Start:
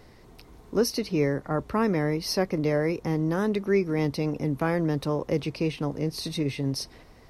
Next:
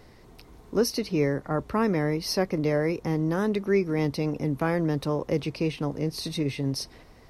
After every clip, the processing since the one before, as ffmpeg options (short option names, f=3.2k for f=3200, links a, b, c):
-af anull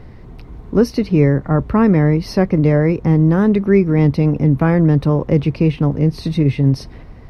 -af "bass=f=250:g=10,treble=f=4k:g=-14,volume=7.5dB"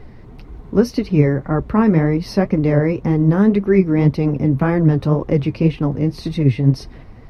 -af "flanger=delay=2.4:depth=7.6:regen=43:speed=1.9:shape=sinusoidal,volume=2.5dB"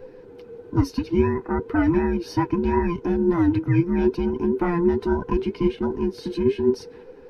-af "afftfilt=real='real(if(between(b,1,1008),(2*floor((b-1)/24)+1)*24-b,b),0)':imag='imag(if(between(b,1,1008),(2*floor((b-1)/24)+1)*24-b,b),0)*if(between(b,1,1008),-1,1)':win_size=2048:overlap=0.75,volume=-6dB"